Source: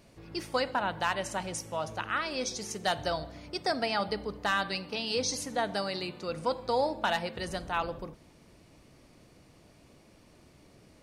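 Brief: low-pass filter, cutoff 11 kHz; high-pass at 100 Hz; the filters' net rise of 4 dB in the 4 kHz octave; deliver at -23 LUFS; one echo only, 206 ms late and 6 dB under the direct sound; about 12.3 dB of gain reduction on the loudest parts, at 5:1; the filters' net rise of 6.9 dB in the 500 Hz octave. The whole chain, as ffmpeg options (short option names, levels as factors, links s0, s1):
-af "highpass=100,lowpass=11000,equalizer=f=500:t=o:g=8,equalizer=f=4000:t=o:g=5,acompressor=threshold=0.0251:ratio=5,aecho=1:1:206:0.501,volume=3.98"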